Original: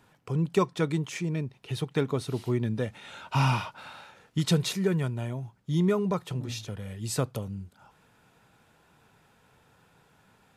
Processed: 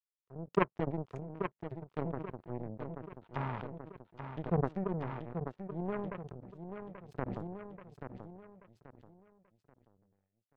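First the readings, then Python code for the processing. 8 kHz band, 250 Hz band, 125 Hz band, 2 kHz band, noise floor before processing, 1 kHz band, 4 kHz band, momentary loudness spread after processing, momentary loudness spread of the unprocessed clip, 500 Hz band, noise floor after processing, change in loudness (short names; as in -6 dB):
under -35 dB, -9.5 dB, -11.5 dB, -9.0 dB, -63 dBFS, -5.5 dB, under -20 dB, 17 LU, 13 LU, -7.5 dB, under -85 dBFS, -10.0 dB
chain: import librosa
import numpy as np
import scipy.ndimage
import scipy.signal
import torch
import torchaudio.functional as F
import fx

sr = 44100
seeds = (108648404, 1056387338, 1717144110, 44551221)

y = fx.wiener(x, sr, points=15)
y = fx.env_lowpass_down(y, sr, base_hz=1100.0, full_db=-25.0)
y = fx.high_shelf(y, sr, hz=4600.0, db=-9.5)
y = fx.power_curve(y, sr, exponent=3.0)
y = fx.echo_feedback(y, sr, ms=833, feedback_pct=31, wet_db=-8.0)
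y = fx.sustainer(y, sr, db_per_s=28.0)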